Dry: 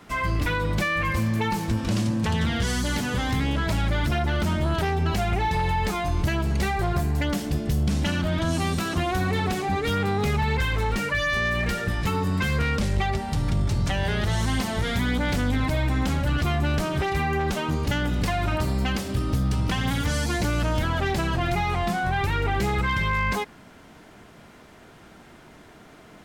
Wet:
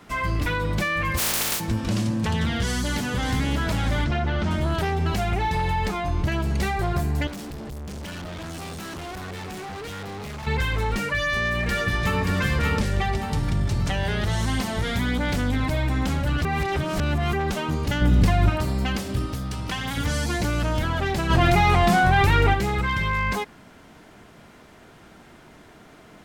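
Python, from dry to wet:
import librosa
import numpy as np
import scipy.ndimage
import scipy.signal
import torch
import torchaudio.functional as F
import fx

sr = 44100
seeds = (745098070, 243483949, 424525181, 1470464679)

y = fx.spec_flatten(x, sr, power=0.11, at=(1.17, 1.59), fade=0.02)
y = fx.echo_throw(y, sr, start_s=2.64, length_s=0.79, ms=580, feedback_pct=50, wet_db=-8.5)
y = fx.air_absorb(y, sr, metres=110.0, at=(4.04, 4.51))
y = fx.high_shelf(y, sr, hz=5700.0, db=-9.5, at=(5.88, 6.32))
y = fx.overload_stage(y, sr, gain_db=33.5, at=(7.27, 10.47))
y = fx.echo_throw(y, sr, start_s=11.13, length_s=1.1, ms=580, feedback_pct=45, wet_db=-3.5)
y = fx.low_shelf(y, sr, hz=310.0, db=9.5, at=(18.01, 18.5))
y = fx.low_shelf(y, sr, hz=440.0, db=-7.5, at=(19.26, 19.97))
y = fx.env_flatten(y, sr, amount_pct=70, at=(21.29, 22.53), fade=0.02)
y = fx.edit(y, sr, fx.reverse_span(start_s=16.45, length_s=0.88), tone=tone)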